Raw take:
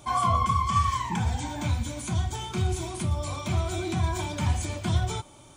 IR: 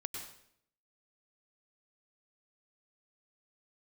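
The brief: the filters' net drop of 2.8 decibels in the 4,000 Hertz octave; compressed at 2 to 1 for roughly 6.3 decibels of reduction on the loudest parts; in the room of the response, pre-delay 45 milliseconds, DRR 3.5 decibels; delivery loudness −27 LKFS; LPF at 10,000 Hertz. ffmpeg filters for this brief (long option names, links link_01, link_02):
-filter_complex "[0:a]lowpass=10000,equalizer=frequency=4000:width_type=o:gain=-3.5,acompressor=threshold=-31dB:ratio=2,asplit=2[link_01][link_02];[1:a]atrim=start_sample=2205,adelay=45[link_03];[link_02][link_03]afir=irnorm=-1:irlink=0,volume=-3dB[link_04];[link_01][link_04]amix=inputs=2:normalize=0,volume=4dB"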